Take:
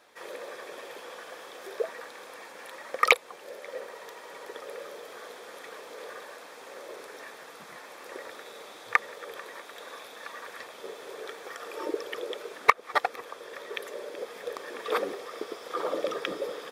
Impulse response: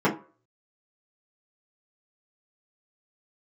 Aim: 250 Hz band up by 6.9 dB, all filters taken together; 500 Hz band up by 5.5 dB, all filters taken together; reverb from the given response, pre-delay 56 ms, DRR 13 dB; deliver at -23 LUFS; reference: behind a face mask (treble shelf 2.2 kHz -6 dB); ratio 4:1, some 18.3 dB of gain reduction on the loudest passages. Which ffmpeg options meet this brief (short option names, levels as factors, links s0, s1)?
-filter_complex "[0:a]equalizer=f=250:t=o:g=8,equalizer=f=500:t=o:g=4.5,acompressor=threshold=0.02:ratio=4,asplit=2[s0][s1];[1:a]atrim=start_sample=2205,adelay=56[s2];[s1][s2]afir=irnorm=-1:irlink=0,volume=0.0355[s3];[s0][s3]amix=inputs=2:normalize=0,highshelf=f=2200:g=-6,volume=6.68"